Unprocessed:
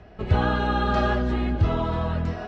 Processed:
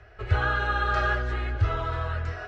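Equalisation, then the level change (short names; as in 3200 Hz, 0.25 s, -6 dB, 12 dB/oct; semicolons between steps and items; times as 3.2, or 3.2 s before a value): EQ curve 120 Hz 0 dB, 180 Hz -24 dB, 400 Hz -3 dB, 990 Hz -4 dB, 1400 Hz +8 dB, 3400 Hz -1 dB, 6300 Hz +2 dB; -2.5 dB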